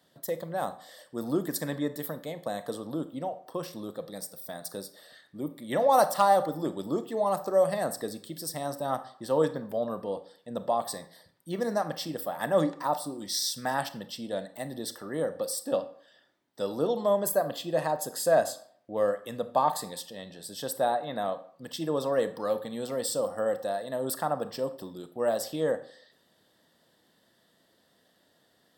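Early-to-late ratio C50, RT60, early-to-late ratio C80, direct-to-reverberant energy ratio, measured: 14.5 dB, 0.60 s, 18.0 dB, 11.5 dB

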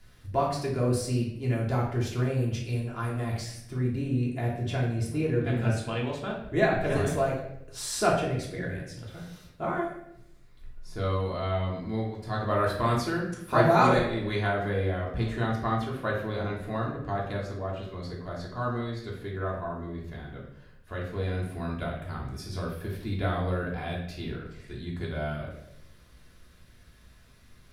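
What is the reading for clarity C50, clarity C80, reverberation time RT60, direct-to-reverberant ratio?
4.0 dB, 7.5 dB, 0.80 s, −4.0 dB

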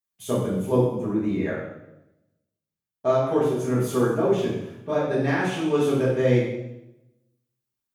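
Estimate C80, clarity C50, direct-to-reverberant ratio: 4.5 dB, 1.5 dB, −8.5 dB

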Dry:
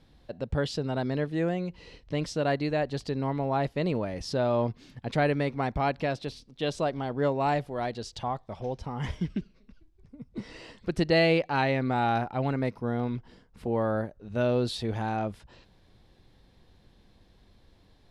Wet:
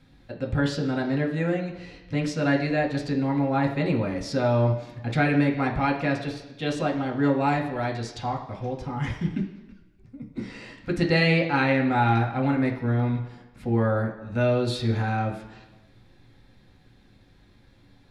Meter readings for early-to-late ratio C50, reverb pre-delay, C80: 8.5 dB, 3 ms, 11.0 dB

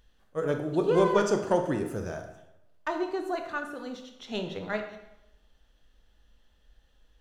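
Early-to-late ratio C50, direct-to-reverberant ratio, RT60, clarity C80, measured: 7.5 dB, 5.0 dB, 0.90 s, 10.0 dB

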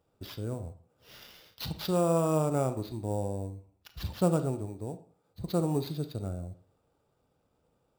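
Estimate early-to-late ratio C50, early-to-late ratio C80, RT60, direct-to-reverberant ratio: 13.5 dB, 17.5 dB, 0.50 s, 11.0 dB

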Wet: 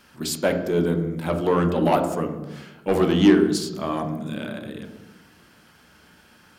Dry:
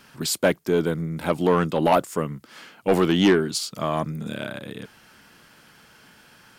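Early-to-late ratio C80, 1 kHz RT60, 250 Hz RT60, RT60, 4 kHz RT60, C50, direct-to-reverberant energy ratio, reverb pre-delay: 11.0 dB, 1.0 s, 1.4 s, 1.1 s, 0.80 s, 8.5 dB, 5.0 dB, 3 ms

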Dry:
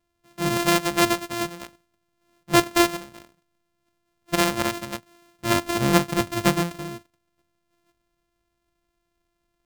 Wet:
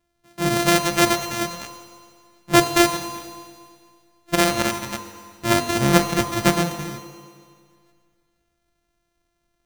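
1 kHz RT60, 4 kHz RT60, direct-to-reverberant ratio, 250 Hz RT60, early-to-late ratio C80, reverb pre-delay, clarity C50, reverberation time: 2.0 s, 2.0 s, 6.0 dB, 2.0 s, 8.5 dB, 4 ms, 7.5 dB, 2.0 s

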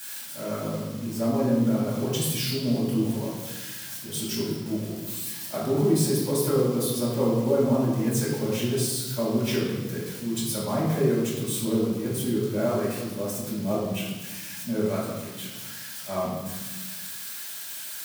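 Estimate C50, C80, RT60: 1.5 dB, 3.5 dB, 1.2 s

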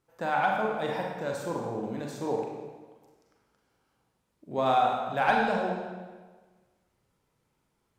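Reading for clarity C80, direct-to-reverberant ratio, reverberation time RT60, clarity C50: 3.5 dB, −1.0 dB, 1.4 s, 1.5 dB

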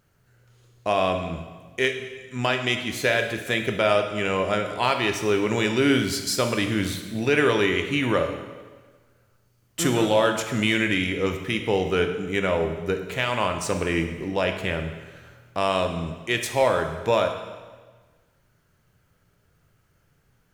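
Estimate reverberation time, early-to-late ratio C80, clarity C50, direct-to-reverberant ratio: 1.4 s, 9.5 dB, 7.5 dB, 5.5 dB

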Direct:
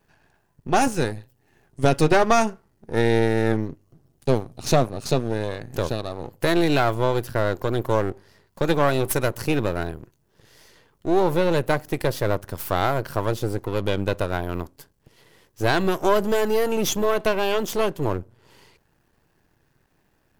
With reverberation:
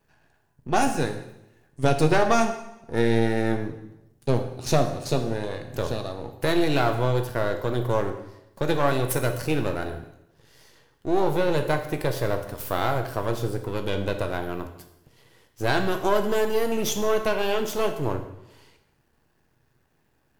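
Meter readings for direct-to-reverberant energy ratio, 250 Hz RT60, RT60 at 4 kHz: 5.5 dB, 0.85 s, 0.80 s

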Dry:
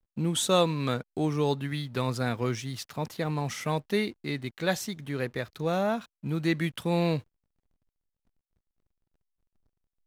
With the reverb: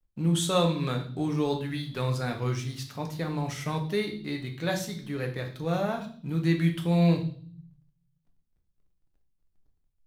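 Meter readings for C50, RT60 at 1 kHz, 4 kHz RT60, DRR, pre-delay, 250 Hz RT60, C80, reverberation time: 10.0 dB, 0.45 s, 0.60 s, 3.0 dB, 6 ms, 0.90 s, 14.0 dB, 0.50 s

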